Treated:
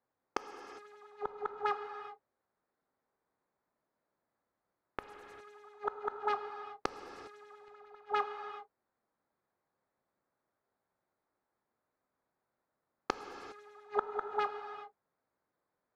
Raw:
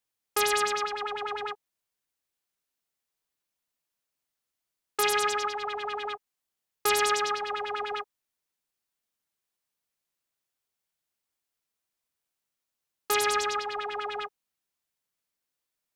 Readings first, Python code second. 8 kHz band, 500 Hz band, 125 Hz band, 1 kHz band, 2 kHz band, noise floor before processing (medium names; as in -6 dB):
under -25 dB, -8.5 dB, no reading, -8.0 dB, -14.5 dB, under -85 dBFS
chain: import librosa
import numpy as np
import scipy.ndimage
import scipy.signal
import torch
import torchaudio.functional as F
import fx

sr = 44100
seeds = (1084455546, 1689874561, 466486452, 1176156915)

p1 = fx.wiener(x, sr, points=15)
p2 = fx.doubler(p1, sr, ms=30.0, db=-14.0)
p3 = fx.cheby_harmonics(p2, sr, harmonics=(3, 7), levels_db=(-35, -39), full_scale_db=-12.0)
p4 = fx.high_shelf(p3, sr, hz=2700.0, db=-8.0)
p5 = p4 + fx.echo_single(p4, sr, ms=197, db=-5.0, dry=0)
p6 = fx.over_compress(p5, sr, threshold_db=-31.0, ratio=-1.0)
p7 = fx.highpass(p6, sr, hz=770.0, slope=6)
p8 = fx.gate_flip(p7, sr, shuts_db=-29.0, range_db=-34)
p9 = fx.tilt_eq(p8, sr, slope=-3.0)
p10 = fx.rev_gated(p9, sr, seeds[0], gate_ms=430, shape='flat', drr_db=7.0)
y = p10 * 10.0 ** (12.5 / 20.0)